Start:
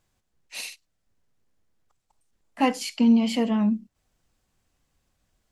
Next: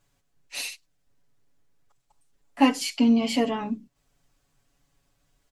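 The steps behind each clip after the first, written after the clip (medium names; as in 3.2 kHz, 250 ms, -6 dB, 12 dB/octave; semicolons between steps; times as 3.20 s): comb 7.1 ms, depth 90%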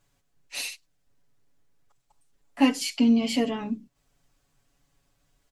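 dynamic bell 950 Hz, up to -6 dB, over -40 dBFS, Q 1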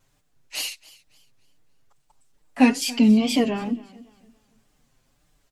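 wow and flutter 130 cents; modulated delay 280 ms, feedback 32%, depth 89 cents, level -21 dB; trim +4 dB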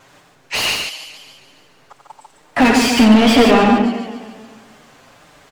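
overdrive pedal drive 33 dB, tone 1.5 kHz, clips at -4.5 dBFS; on a send: loudspeakers at several distances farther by 30 m -7 dB, 50 m -5 dB; on the sum: trim +1 dB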